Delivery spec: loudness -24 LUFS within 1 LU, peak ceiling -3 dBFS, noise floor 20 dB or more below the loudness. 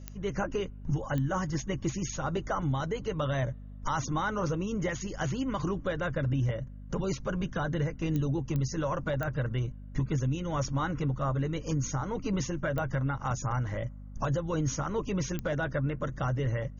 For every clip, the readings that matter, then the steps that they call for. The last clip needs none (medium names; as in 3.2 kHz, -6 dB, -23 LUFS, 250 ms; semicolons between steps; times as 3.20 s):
clicks found 7; hum 50 Hz; highest harmonic 250 Hz; hum level -42 dBFS; loudness -32.0 LUFS; peak level -15.5 dBFS; loudness target -24.0 LUFS
-> de-click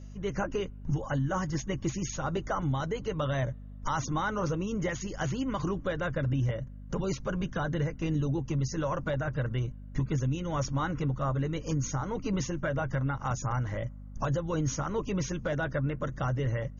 clicks found 0; hum 50 Hz; highest harmonic 250 Hz; hum level -42 dBFS
-> de-hum 50 Hz, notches 5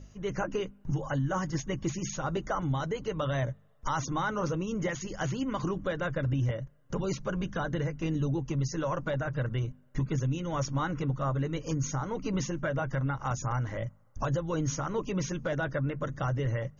hum not found; loudness -32.5 LUFS; peak level -19.5 dBFS; loudness target -24.0 LUFS
-> trim +8.5 dB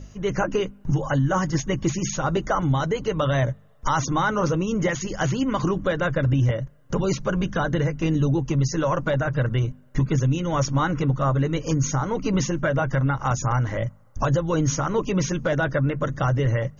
loudness -24.0 LUFS; peak level -11.0 dBFS; noise floor -49 dBFS